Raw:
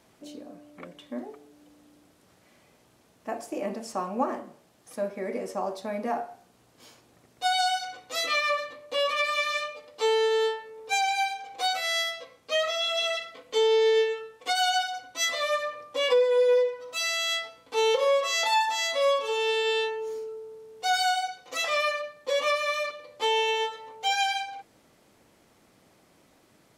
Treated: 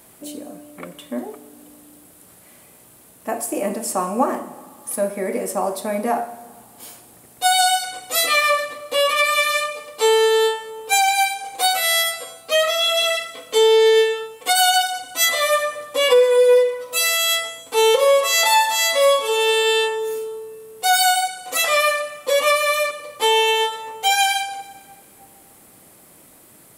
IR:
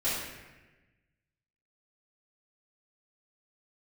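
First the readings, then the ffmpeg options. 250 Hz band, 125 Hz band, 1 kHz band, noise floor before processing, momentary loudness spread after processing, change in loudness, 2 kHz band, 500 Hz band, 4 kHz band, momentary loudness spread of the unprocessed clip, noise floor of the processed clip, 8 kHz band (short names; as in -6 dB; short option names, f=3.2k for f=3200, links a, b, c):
+8.5 dB, n/a, +8.0 dB, -62 dBFS, 15 LU, +9.0 dB, +8.5 dB, +8.0 dB, +9.0 dB, 15 LU, -49 dBFS, +14.0 dB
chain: -filter_complex "[0:a]aexciter=amount=5.1:drive=6.2:freq=8.1k,asplit=2[a][b];[b]equalizer=f=10k:w=0.53:g=11[c];[1:a]atrim=start_sample=2205,asetrate=22491,aresample=44100[d];[c][d]afir=irnorm=-1:irlink=0,volume=-29dB[e];[a][e]amix=inputs=2:normalize=0,volume=8dB"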